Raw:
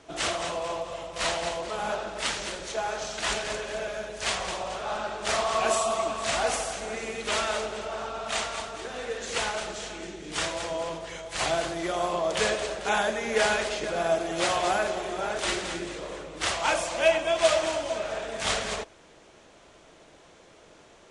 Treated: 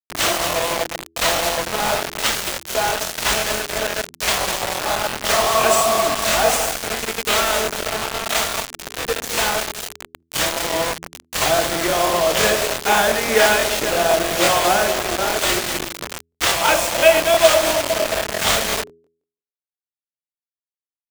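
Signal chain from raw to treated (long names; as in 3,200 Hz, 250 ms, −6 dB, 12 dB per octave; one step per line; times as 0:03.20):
bit reduction 5 bits
hum removal 82.88 Hz, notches 5
regular buffer underruns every 0.17 s, samples 1,024, repeat, from 0:00.32
level +9 dB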